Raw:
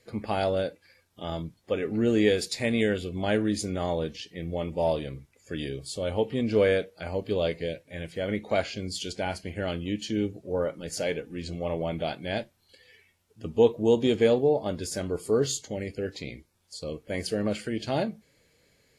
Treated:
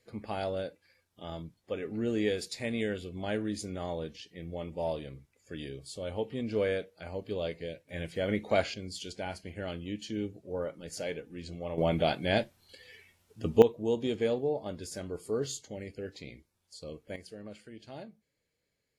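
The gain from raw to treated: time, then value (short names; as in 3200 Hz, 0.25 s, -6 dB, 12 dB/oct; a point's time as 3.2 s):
-7.5 dB
from 7.89 s -1 dB
from 8.74 s -7 dB
from 11.78 s +3 dB
from 13.62 s -8 dB
from 17.16 s -17.5 dB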